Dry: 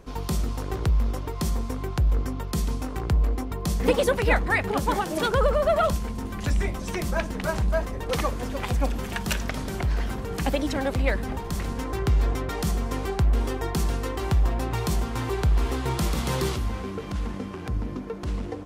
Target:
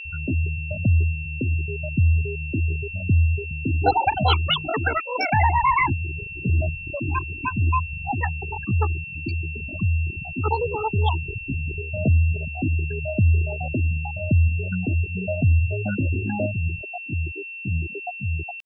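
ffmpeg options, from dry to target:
-af "afftfilt=real='re*gte(hypot(re,im),0.224)':imag='im*gte(hypot(re,im),0.224)':win_size=1024:overlap=0.75,asetrate=70004,aresample=44100,atempo=0.629961,aeval=exprs='val(0)+0.0158*sin(2*PI*2700*n/s)':c=same,volume=1.41"

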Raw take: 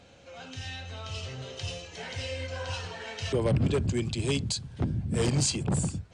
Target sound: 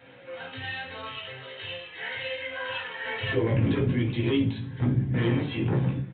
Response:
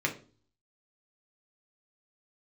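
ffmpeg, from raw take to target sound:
-filter_complex "[0:a]asetnsamples=n=441:p=0,asendcmd='1.08 highpass f 1300;3.05 highpass f 230',highpass=f=430:p=1,alimiter=level_in=1.41:limit=0.0631:level=0:latency=1:release=10,volume=0.708,flanger=delay=15.5:depth=3:speed=1[s0];[1:a]atrim=start_sample=2205,asetrate=40131,aresample=44100[s1];[s0][s1]afir=irnorm=-1:irlink=0,aresample=8000,aresample=44100,volume=1.41"

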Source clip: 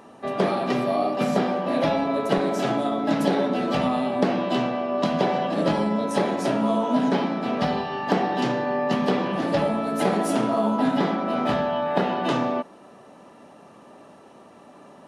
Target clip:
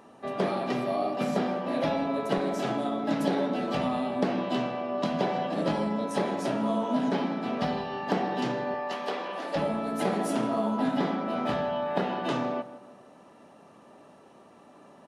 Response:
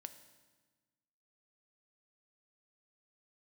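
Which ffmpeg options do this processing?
-filter_complex "[0:a]asettb=1/sr,asplit=3[s0][s1][s2];[s0]atrim=end=8.744[s3];[s1]atrim=start=8.74:end=9.56,asetpts=PTS-STARTPTS,afade=t=in:d=0.004:c=qsin,afade=t=out:st=0.816:d=0.004:c=qsin,highpass=520[s4];[s2]atrim=start=9.556[s5];[s3][s4]acrossfade=d=0.004:c1=hsin:c2=qsin[s6];[s6][s5]acrossfade=d=0.004:c1=qsin:c2=hsin,asplit=2[s7][s8];[s8]adelay=159,lowpass=f=2500:p=1,volume=0.2,asplit=2[s9][s10];[s10]adelay=159,lowpass=f=2500:p=1,volume=0.39,asplit=2[s11][s12];[s12]adelay=159,lowpass=f=2500:p=1,volume=0.39,asplit=2[s13][s14];[s14]adelay=159,lowpass=f=2500:p=1,volume=0.39[s15];[s9][s11][s13][s15]amix=inputs=4:normalize=0[s16];[s7][s16]amix=inputs=2:normalize=0,volume=0.531"

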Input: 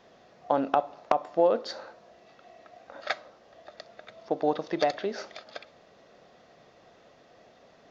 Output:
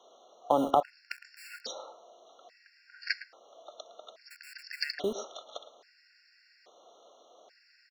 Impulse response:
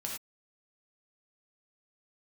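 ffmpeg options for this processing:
-filter_complex "[0:a]asettb=1/sr,asplit=3[s0][s1][s2];[s0]atrim=end=0.964[s3];[s1]atrim=start=0.96:end=1.36,asetpts=PTS-STARTPTS,afade=t=in:d=0.004:c=qsin,afade=t=out:st=0.396:d=0.004:c=qsin,bandreject=f=61.85:t=h:w=4,bandreject=f=123.7:t=h:w=4,bandreject=f=185.55:t=h:w=4,bandreject=f=247.4:t=h:w=4,bandreject=f=309.25:t=h:w=4,bandreject=f=371.1:t=h:w=4,bandreject=f=432.95:t=h:w=4,bandreject=f=494.8:t=h:w=4,bandreject=f=556.65:t=h:w=4,bandreject=f=618.5:t=h:w=4,bandreject=f=680.35:t=h:w=4,bandreject=f=742.2:t=h:w=4,bandreject=f=804.05:t=h:w=4,bandreject=f=865.9:t=h:w=4,bandreject=f=927.75:t=h:w=4,bandreject=f=989.6:t=h:w=4[s4];[s2]atrim=start=1.356[s5];[s3][s4]acrossfade=d=0.004:c1=hsin:c2=qsin[s6];[s6][s5]acrossfade=d=0.004:c1=qsin:c2=hsin,acrossover=split=340|980[s7][s8][s9];[s7]acrusher=bits=6:mix=0:aa=0.000001[s10];[s9]equalizer=f=5100:t=o:w=0.61:g=9.5[s11];[s10][s8][s11]amix=inputs=3:normalize=0,asplit=2[s12][s13];[s13]adelay=110,highpass=300,lowpass=3400,asoftclip=type=hard:threshold=0.158,volume=0.2[s14];[s12][s14]amix=inputs=2:normalize=0,afftfilt=real='re*gt(sin(2*PI*0.6*pts/sr)*(1-2*mod(floor(b*sr/1024/1400),2)),0)':imag='im*gt(sin(2*PI*0.6*pts/sr)*(1-2*mod(floor(b*sr/1024/1400),2)),0)':win_size=1024:overlap=0.75"

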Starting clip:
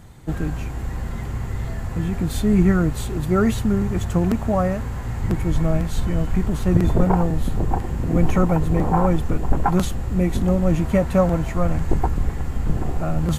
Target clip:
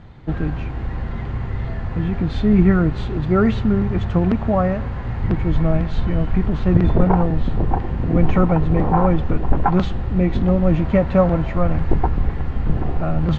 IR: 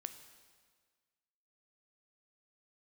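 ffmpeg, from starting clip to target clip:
-filter_complex "[0:a]lowpass=f=4400:w=0.5412,lowpass=f=4400:w=1.3066,asplit=2[s0][s1];[1:a]atrim=start_sample=2205,lowpass=4100[s2];[s1][s2]afir=irnorm=-1:irlink=0,volume=0.708[s3];[s0][s3]amix=inputs=2:normalize=0,volume=0.891"

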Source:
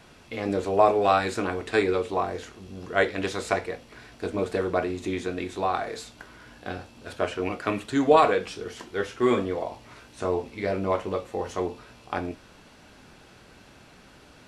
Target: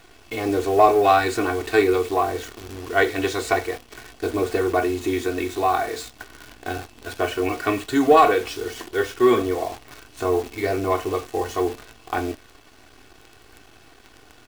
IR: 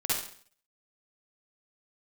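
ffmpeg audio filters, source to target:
-filter_complex "[0:a]aecho=1:1:2.7:0.79,asplit=2[s0][s1];[s1]asoftclip=type=tanh:threshold=0.0944,volume=0.447[s2];[s0][s2]amix=inputs=2:normalize=0,acrusher=bits=7:dc=4:mix=0:aa=0.000001"

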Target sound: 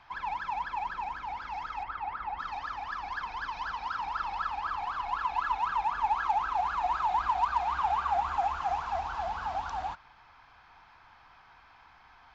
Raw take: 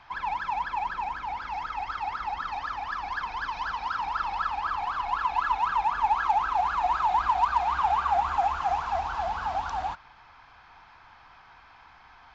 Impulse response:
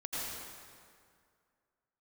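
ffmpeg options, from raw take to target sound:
-filter_complex "[0:a]asettb=1/sr,asplit=3[s0][s1][s2];[s0]atrim=end=1.834[s3];[s1]atrim=start=1.83:end=2.39,asetpts=PTS-STARTPTS,afade=t=in:d=0.004:c=qsin,afade=t=out:st=0.556:d=0.004:c=qsin,lowpass=2400[s4];[s2]atrim=start=2.386[s5];[s3][s4]acrossfade=d=0.004:c1=hsin:c2=qsin[s6];[s6][s5]acrossfade=d=0.004:c1=qsin:c2=hsin,volume=0.631"

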